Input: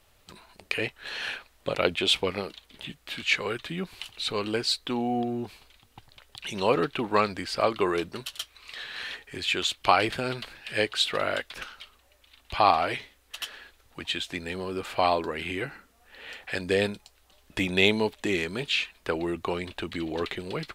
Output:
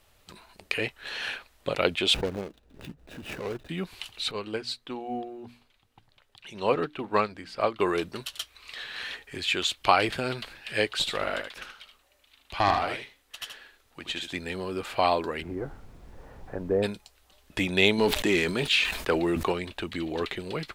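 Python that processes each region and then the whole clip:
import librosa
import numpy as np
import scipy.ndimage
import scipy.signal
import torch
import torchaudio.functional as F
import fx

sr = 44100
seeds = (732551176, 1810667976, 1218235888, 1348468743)

y = fx.chain(x, sr, fx.median_filter(points=41),
    fx.pre_swell(db_per_s=100.0), at=(2.14, 3.69))
y = fx.chain(y, sr, fx.high_shelf(hz=4500.0, db=-7.0),
    fx.hum_notches(base_hz=60, count=5),
    fx.upward_expand(threshold_db=-34.0, expansion=1.5), at=(4.31, 7.8))
y = fx.chain(y, sr, fx.peak_eq(hz=79.0, db=-4.5, octaves=1.8),
    fx.tube_stage(drive_db=12.0, bias=0.65),
    fx.echo_single(ms=77, db=-7.0), at=(10.99, 14.33))
y = fx.lowpass(y, sr, hz=1100.0, slope=24, at=(15.41, 16.82), fade=0.02)
y = fx.dmg_noise_colour(y, sr, seeds[0], colour='brown', level_db=-45.0, at=(15.41, 16.82), fade=0.02)
y = fx.chain(y, sr, fx.leveller(passes=1),
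    fx.peak_eq(hz=100.0, db=-6.0, octaves=0.48),
    fx.sustainer(db_per_s=67.0), at=(17.98, 19.52))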